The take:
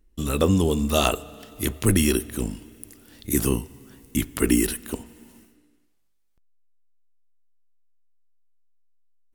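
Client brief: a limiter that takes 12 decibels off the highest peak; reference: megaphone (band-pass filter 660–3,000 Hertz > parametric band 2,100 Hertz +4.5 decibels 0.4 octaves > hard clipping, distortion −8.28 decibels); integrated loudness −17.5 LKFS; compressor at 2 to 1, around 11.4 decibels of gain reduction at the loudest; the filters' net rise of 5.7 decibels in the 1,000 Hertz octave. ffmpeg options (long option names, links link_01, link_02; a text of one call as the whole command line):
ffmpeg -i in.wav -af "equalizer=frequency=1000:width_type=o:gain=9,acompressor=threshold=-35dB:ratio=2,alimiter=limit=-23.5dB:level=0:latency=1,highpass=660,lowpass=3000,equalizer=frequency=2100:width_type=o:width=0.4:gain=4.5,asoftclip=type=hard:threshold=-39.5dB,volume=29.5dB" out.wav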